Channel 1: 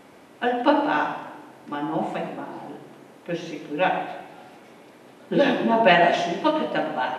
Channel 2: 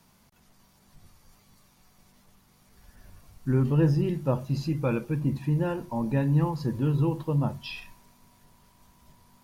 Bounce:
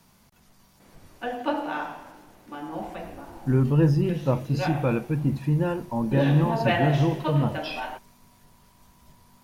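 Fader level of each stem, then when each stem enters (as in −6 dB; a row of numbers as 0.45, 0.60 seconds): −8.0, +2.5 decibels; 0.80, 0.00 seconds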